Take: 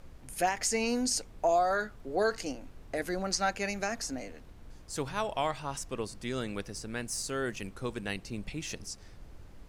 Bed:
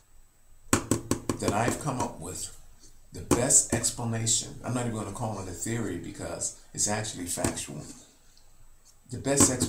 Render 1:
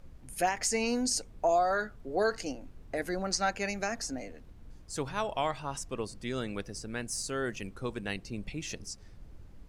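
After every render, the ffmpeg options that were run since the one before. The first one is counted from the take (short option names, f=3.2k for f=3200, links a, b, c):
-af "afftdn=nr=6:nf=-51"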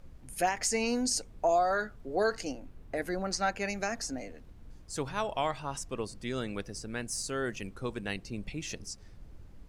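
-filter_complex "[0:a]asettb=1/sr,asplit=3[a][b][c];[a]atrim=end=2.604[d];[b]atrim=start=2.6:end=3.7,asetpts=PTS-STARTPTS,afade=t=in:d=0.004:c=qsin,afade=t=out:st=1.096:d=0.004:c=qsin,equalizer=f=6.2k:t=o:w=1.5:g=-3.5[e];[c]atrim=start=3.696[f];[d][e]acrossfade=d=0.004:c1=hsin:c2=qsin[g];[g][f]acrossfade=d=0.004:c1=qsin:c2=hsin"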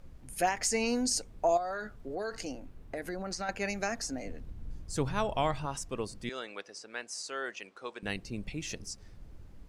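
-filter_complex "[0:a]asettb=1/sr,asplit=3[a][b][c];[a]atrim=end=1.574[d];[b]atrim=start=1.57:end=3.49,asetpts=PTS-STARTPTS,afade=t=in:d=0.004:c=qsin,afade=t=out:st=1.916:d=0.004:c=qsin,acompressor=threshold=-33dB:ratio=4:attack=3.2:release=140:knee=1:detection=peak[e];[c]atrim=start=3.486[f];[d][e]acrossfade=d=0.004:c1=hsin:c2=qsin[g];[g][f]acrossfade=d=0.004:c1=qsin:c2=hsin,asettb=1/sr,asplit=3[h][i][j];[h]atrim=end=4.254[k];[i]atrim=start=4.25:end=5.66,asetpts=PTS-STARTPTS,afade=t=in:d=0.004:c=qsin,afade=t=out:st=1.406:d=0.004:c=qsin,lowshelf=f=250:g=9[l];[j]atrim=start=5.656[m];[k][l]acrossfade=d=0.004:c1=hsin:c2=qsin[n];[n][m]acrossfade=d=0.004:c1=qsin:c2=hsin,asettb=1/sr,asplit=3[o][p][q];[o]atrim=end=6.294[r];[p]atrim=start=6.29:end=8.03,asetpts=PTS-STARTPTS,afade=t=in:d=0.004:c=qsin,afade=t=out:st=1.736:d=0.004:c=qsin,highpass=560,lowpass=6k[s];[q]atrim=start=8.026[t];[r][s]acrossfade=d=0.004:c1=hsin:c2=qsin[u];[u][t]acrossfade=d=0.004:c1=qsin:c2=hsin"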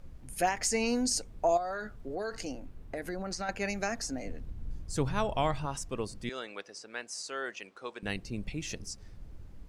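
-af "lowshelf=f=170:g=3"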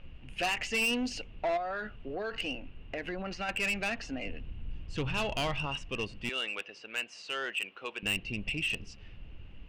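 -af "lowpass=f=2.8k:t=q:w=12,asoftclip=type=tanh:threshold=-26dB"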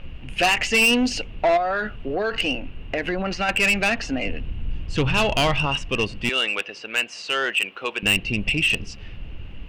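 -af "volume=12dB"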